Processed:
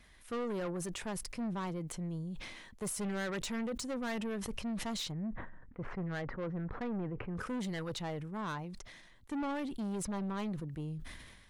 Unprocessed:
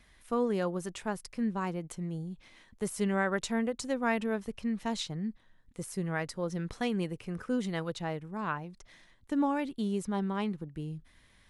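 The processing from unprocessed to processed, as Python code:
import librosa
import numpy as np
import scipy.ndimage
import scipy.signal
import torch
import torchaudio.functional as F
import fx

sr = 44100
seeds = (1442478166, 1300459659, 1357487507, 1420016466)

y = fx.lowpass(x, sr, hz=1800.0, slope=24, at=(5.11, 7.36), fade=0.02)
y = 10.0 ** (-33.5 / 20.0) * np.tanh(y / 10.0 ** (-33.5 / 20.0))
y = fx.sustainer(y, sr, db_per_s=41.0)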